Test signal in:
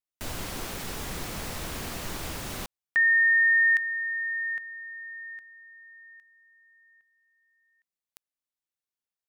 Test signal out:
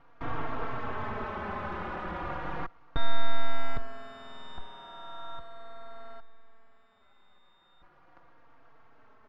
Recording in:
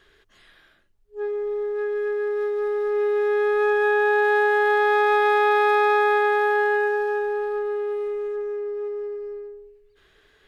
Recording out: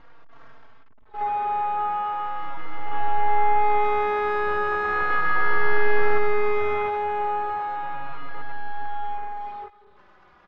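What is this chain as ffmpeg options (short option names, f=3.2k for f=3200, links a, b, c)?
-filter_complex "[0:a]aeval=exprs='val(0)+0.5*0.0141*sgn(val(0))':c=same,aemphasis=mode=production:type=cd,aresample=8000,acrusher=bits=3:mode=log:mix=0:aa=0.000001,aresample=44100,aeval=exprs='abs(val(0))':c=same,asplit=2[a][b];[b]acrusher=bits=3:dc=4:mix=0:aa=0.000001,volume=-3.5dB[c];[a][c]amix=inputs=2:normalize=0,lowpass=f=1.2k:t=q:w=1.7,asplit=2[d][e];[e]adelay=3.8,afreqshift=-0.36[f];[d][f]amix=inputs=2:normalize=1"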